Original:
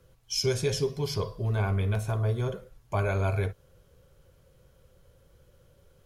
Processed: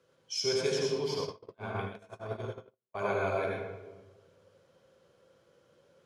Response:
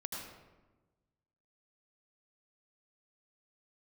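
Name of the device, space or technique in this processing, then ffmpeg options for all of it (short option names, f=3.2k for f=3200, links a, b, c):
supermarket ceiling speaker: -filter_complex "[0:a]highpass=260,lowpass=6.8k[a];[1:a]atrim=start_sample=2205[b];[a][b]afir=irnorm=-1:irlink=0,asplit=3[c][d][e];[c]afade=t=out:st=1.2:d=0.02[f];[d]agate=range=-51dB:threshold=-32dB:ratio=16:detection=peak,afade=t=in:st=1.2:d=0.02,afade=t=out:st=2.99:d=0.02[g];[e]afade=t=in:st=2.99:d=0.02[h];[f][g][h]amix=inputs=3:normalize=0"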